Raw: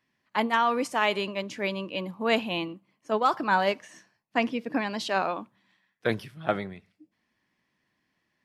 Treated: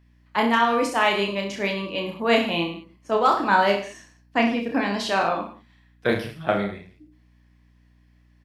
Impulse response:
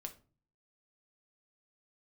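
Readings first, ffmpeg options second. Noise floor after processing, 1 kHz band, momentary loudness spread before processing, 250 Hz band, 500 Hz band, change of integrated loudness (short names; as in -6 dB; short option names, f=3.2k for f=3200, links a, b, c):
-58 dBFS, +5.0 dB, 9 LU, +6.0 dB, +5.5 dB, +5.0 dB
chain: -af "aecho=1:1:30|64.5|104.2|149.8|202.3:0.631|0.398|0.251|0.158|0.1,aeval=exprs='val(0)+0.00112*(sin(2*PI*60*n/s)+sin(2*PI*2*60*n/s)/2+sin(2*PI*3*60*n/s)/3+sin(2*PI*4*60*n/s)/4+sin(2*PI*5*60*n/s)/5)':c=same,volume=3dB"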